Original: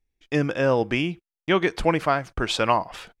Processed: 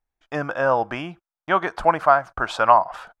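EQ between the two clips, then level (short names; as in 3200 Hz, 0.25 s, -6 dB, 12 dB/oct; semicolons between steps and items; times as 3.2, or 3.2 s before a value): band shelf 970 Hz +14.5 dB; -7.0 dB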